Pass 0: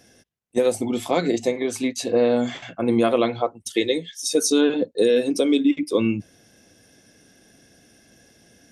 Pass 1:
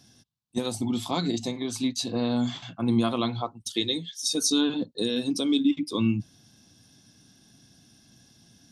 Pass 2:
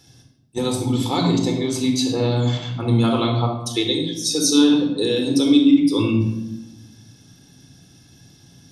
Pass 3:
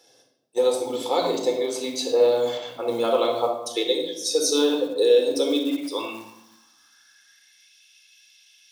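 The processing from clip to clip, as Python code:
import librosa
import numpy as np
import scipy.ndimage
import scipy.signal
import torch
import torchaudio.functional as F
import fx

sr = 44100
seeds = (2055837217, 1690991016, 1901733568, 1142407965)

y1 = fx.graphic_eq(x, sr, hz=(125, 250, 500, 1000, 2000, 4000), db=(9, 4, -12, 7, -9, 10))
y1 = y1 * librosa.db_to_amplitude(-5.5)
y2 = fx.room_shoebox(y1, sr, seeds[0], volume_m3=3500.0, walls='furnished', distance_m=4.2)
y2 = y2 * librosa.db_to_amplitude(3.5)
y3 = fx.quant_float(y2, sr, bits=4)
y3 = fx.filter_sweep_highpass(y3, sr, from_hz=510.0, to_hz=2500.0, start_s=5.66, end_s=7.77, q=4.4)
y3 = y3 * librosa.db_to_amplitude(-4.5)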